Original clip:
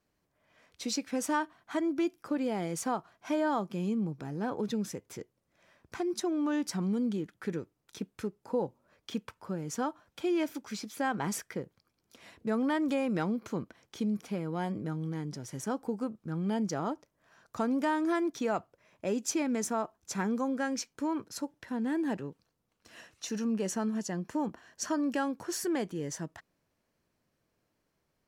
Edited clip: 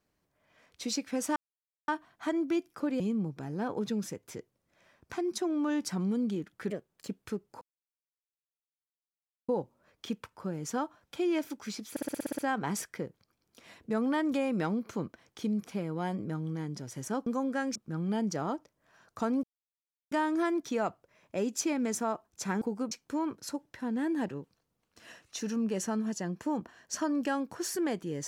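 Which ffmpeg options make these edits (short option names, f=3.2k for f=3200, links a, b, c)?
-filter_complex "[0:a]asplit=19[a][b][c][d][e][f][g][h][i][j][k][l][m][n][o][p][q][r][s];[a]atrim=end=1.36,asetpts=PTS-STARTPTS,afade=t=out:st=1.356:d=0.004:c=hsin,apad=pad_dur=0.52[t];[b]atrim=start=1.36:end=2.482,asetpts=PTS-STARTPTS,afade=t=in:d=0.004:c=hsin[u];[c]atrim=start=3.818:end=7.524[v];[d]atrim=start=7.52:end=8,asetpts=PTS-STARTPTS,asetrate=55125,aresample=44100,atrim=end_sample=16934,asetpts=PTS-STARTPTS[w];[e]atrim=start=7.996:end=8.53,asetpts=PTS-STARTPTS,afade=t=out:st=0.53:d=0.004:c=hsin,apad=pad_dur=1.87[x];[f]atrim=start=8.53:end=11.012,asetpts=PTS-STARTPTS,afade=t=in:d=0.004:c=hsin[y];[g]atrim=start=10.948:end=11.012[z];[h]atrim=start=10.948:end=11.012[aa];[i]atrim=start=10.948:end=11.012[ab];[j]atrim=start=10.948:end=11.012[ac];[k]atrim=start=10.948:end=11.012[ad];[l]atrim=start=10.948:end=11.012[ae];[m]atrim=start=10.948:end=11.012[af];[n]atrim=start=10.948:end=15.832[ag];[o]atrim=start=20.308:end=20.802[ah];[p]atrim=start=16.128:end=17.81,asetpts=PTS-STARTPTS,afade=t=out:st=1.678:d=0.004:c=hsin,apad=pad_dur=0.68[ai];[q]atrim=start=17.81:end=20.312,asetpts=PTS-STARTPTS,afade=t=in:d=0.004:c=hsin[aj];[r]atrim=start=15.828:end=16.132[ak];[s]atrim=start=20.798[al];[t][u]concat=n=2:v=0:a=1[am];[am][v]acrossfade=d=0.004:c1=hsin:c2=hsin[an];[an][w]acrossfade=d=0.004:c1=hsin:c2=hsin[ao];[x][y]concat=n=2:v=0:a=1[ap];[ao][ap]acrossfade=d=0.004:c1=hsin:c2=hsin[aq];[aq][z]acrossfade=d=0.004:c1=hsin:c2=hsin[ar];[ar][aa]acrossfade=d=0.004:c1=hsin:c2=hsin[as];[as][ab]acrossfade=d=0.004:c1=hsin:c2=hsin[at];[at][ac]acrossfade=d=0.004:c1=hsin:c2=hsin[au];[au][ad]acrossfade=d=0.004:c1=hsin:c2=hsin[av];[av][ae]acrossfade=d=0.004:c1=hsin:c2=hsin[aw];[aw][af]acrossfade=d=0.004:c1=hsin:c2=hsin[ax];[ax][ag]acrossfade=d=0.004:c1=hsin:c2=hsin[ay];[ay][ah]acrossfade=d=0.004:c1=hsin:c2=hsin[az];[ai][aj]concat=n=2:v=0:a=1[ba];[az][ba]acrossfade=d=0.004:c1=hsin:c2=hsin[bb];[bb][ak]acrossfade=d=0.004:c1=hsin:c2=hsin[bc];[bc][al]acrossfade=d=0.004:c1=hsin:c2=hsin"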